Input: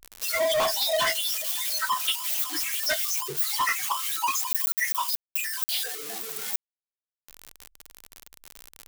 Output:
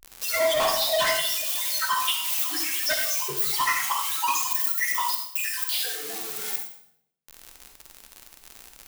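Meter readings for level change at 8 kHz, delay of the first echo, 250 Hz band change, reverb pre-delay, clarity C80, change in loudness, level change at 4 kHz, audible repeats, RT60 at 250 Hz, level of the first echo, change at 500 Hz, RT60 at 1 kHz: +1.5 dB, no echo, +2.5 dB, 40 ms, 7.5 dB, +1.5 dB, +1.5 dB, no echo, 0.95 s, no echo, +1.5 dB, 0.65 s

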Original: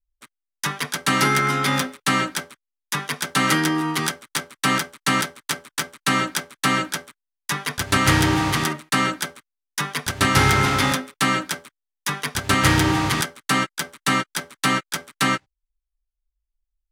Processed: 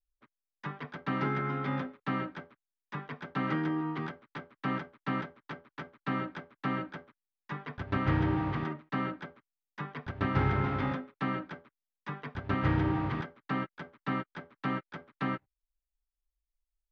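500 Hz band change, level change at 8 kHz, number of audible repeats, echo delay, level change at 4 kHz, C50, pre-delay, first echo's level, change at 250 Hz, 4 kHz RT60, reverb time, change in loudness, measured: -10.0 dB, under -40 dB, no echo, no echo, -25.5 dB, no reverb, no reverb, no echo, -9.0 dB, no reverb, no reverb, -12.5 dB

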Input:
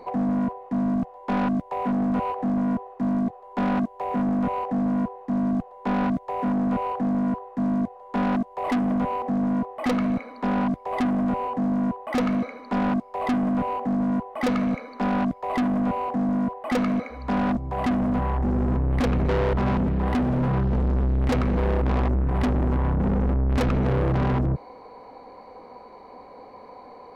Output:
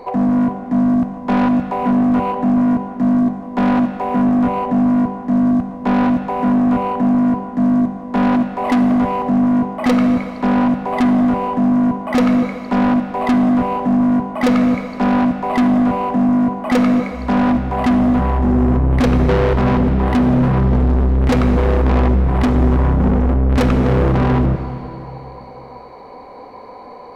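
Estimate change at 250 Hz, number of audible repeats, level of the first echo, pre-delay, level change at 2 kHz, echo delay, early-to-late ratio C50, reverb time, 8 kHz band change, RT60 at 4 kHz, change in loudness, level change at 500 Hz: +9.5 dB, no echo, no echo, 6 ms, +8.0 dB, no echo, 9.0 dB, 2.7 s, no reading, 2.5 s, +9.0 dB, +8.0 dB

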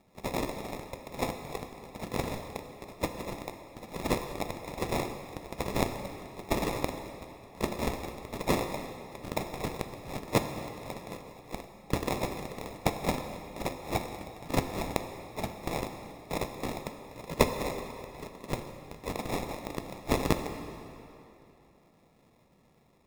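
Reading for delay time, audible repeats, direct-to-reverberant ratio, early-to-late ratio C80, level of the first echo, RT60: no echo, no echo, 6.5 dB, 8.0 dB, no echo, 2.9 s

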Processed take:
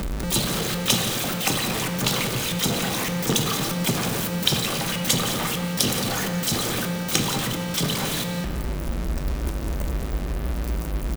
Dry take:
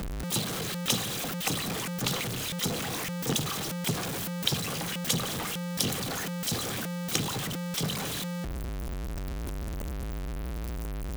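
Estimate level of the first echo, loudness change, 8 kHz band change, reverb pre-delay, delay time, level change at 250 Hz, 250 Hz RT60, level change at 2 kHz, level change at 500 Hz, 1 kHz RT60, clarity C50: -13.5 dB, +7.0 dB, +7.0 dB, 3 ms, 174 ms, +7.5 dB, 2.7 s, +7.5 dB, +7.5 dB, 1.9 s, 6.0 dB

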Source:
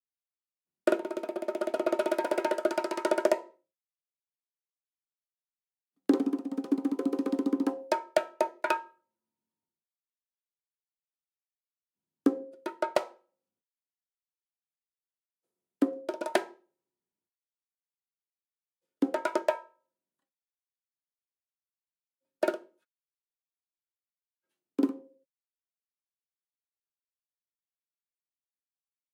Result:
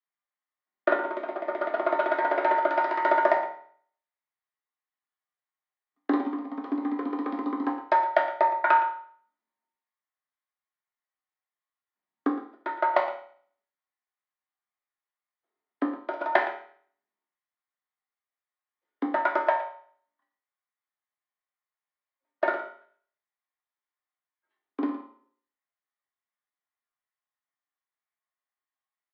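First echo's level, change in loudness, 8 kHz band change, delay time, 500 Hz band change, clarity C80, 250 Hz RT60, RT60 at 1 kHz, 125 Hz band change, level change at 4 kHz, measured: -13.0 dB, +4.0 dB, under -20 dB, 115 ms, +2.0 dB, 9.5 dB, 0.50 s, 0.50 s, no reading, -2.5 dB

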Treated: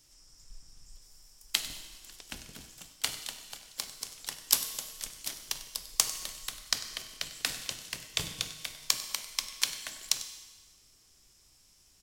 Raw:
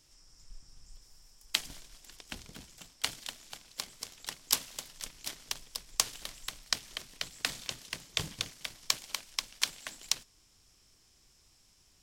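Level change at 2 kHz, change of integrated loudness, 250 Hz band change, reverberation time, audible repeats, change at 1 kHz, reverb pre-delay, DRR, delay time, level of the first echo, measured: 0.0 dB, +2.5 dB, -0.5 dB, 1.4 s, 1, 0.0 dB, 6 ms, 8.0 dB, 97 ms, -16.5 dB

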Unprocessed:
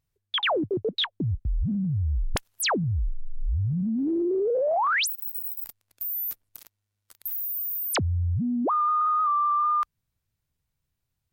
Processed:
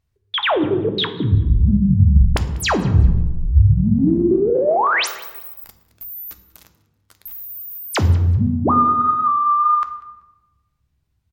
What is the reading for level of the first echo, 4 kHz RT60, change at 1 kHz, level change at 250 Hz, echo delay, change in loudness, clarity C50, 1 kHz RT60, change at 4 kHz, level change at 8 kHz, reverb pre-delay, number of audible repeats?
-23.0 dB, 0.85 s, +7.0 dB, +9.5 dB, 192 ms, +9.0 dB, 11.5 dB, 1.1 s, +4.5 dB, +1.5 dB, 3 ms, 1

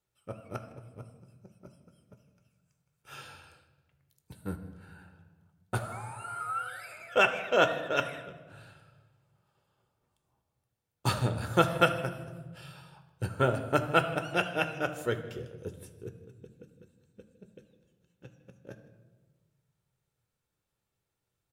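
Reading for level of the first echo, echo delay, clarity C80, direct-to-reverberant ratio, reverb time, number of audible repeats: -20.5 dB, 157 ms, 12.0 dB, 8.0 dB, 1.4 s, 1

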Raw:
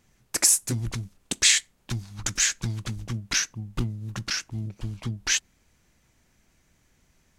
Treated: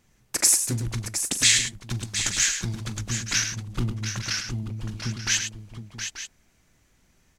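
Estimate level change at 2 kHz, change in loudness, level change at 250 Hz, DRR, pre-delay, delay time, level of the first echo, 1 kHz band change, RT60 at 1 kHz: +1.5 dB, +1.0 dB, +1.5 dB, no reverb, no reverb, 41 ms, -15.0 dB, +1.5 dB, no reverb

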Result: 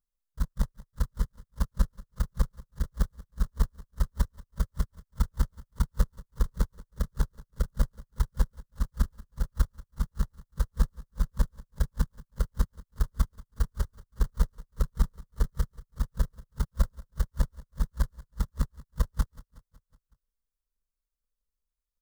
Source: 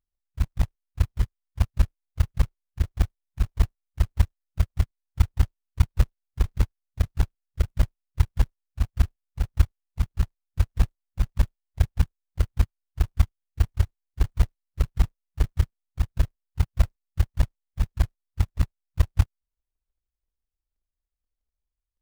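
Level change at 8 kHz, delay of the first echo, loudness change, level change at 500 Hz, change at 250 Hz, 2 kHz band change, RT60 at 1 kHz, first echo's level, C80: no reading, 185 ms, -5.5 dB, -2.5 dB, -1.5 dB, -5.0 dB, no reverb, -20.0 dB, no reverb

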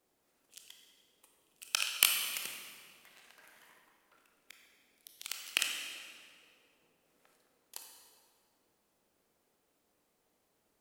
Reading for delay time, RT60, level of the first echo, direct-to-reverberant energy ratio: no echo, 2.2 s, no echo, 1.5 dB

